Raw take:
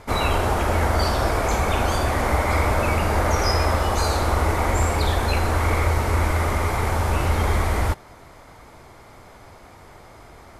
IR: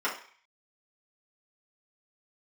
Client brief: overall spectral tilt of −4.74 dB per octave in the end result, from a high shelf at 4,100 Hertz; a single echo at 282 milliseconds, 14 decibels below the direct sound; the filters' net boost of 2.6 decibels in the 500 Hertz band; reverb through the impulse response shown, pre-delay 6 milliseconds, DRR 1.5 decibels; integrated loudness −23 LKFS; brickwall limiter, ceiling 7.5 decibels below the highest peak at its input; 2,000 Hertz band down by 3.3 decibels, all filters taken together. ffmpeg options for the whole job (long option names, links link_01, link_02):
-filter_complex "[0:a]equalizer=frequency=500:width_type=o:gain=3.5,equalizer=frequency=2000:width_type=o:gain=-6,highshelf=frequency=4100:gain=7,alimiter=limit=-14.5dB:level=0:latency=1,aecho=1:1:282:0.2,asplit=2[link_01][link_02];[1:a]atrim=start_sample=2205,adelay=6[link_03];[link_02][link_03]afir=irnorm=-1:irlink=0,volume=-11.5dB[link_04];[link_01][link_04]amix=inputs=2:normalize=0,volume=-0.5dB"